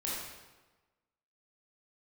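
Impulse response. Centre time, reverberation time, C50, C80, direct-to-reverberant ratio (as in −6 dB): 84 ms, 1.2 s, −1.5 dB, 1.5 dB, −6.5 dB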